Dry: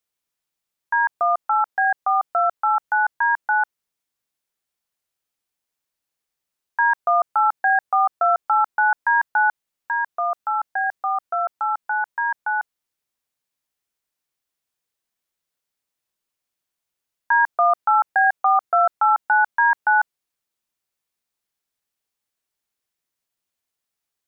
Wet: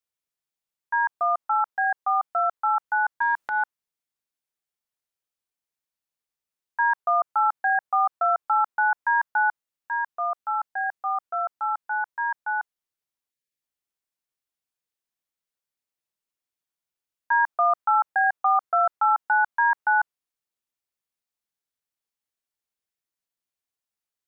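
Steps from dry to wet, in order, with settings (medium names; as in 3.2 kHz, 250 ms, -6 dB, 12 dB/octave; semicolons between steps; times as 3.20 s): dynamic bell 1.1 kHz, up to +5 dB, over -27 dBFS, Q 0.98; 3.21–3.63 s: transient shaper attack -7 dB, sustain +10 dB; 13.31–13.61 s: spectral selection erased 590–1600 Hz; trim -7.5 dB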